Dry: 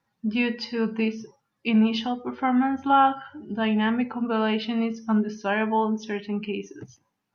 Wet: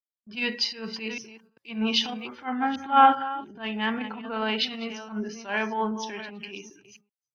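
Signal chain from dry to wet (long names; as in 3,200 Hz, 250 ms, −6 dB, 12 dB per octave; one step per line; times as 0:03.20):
delay that plays each chunk backwards 394 ms, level −11 dB
transient designer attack −11 dB, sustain +4 dB
noise gate with hold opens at −30 dBFS
spectral tilt +2.5 dB per octave
multiband upward and downward expander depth 70%
level −2 dB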